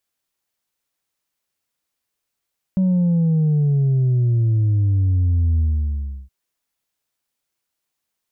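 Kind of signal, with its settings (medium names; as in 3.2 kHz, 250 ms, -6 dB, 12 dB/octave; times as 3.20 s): sub drop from 190 Hz, over 3.52 s, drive 2 dB, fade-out 0.70 s, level -14.5 dB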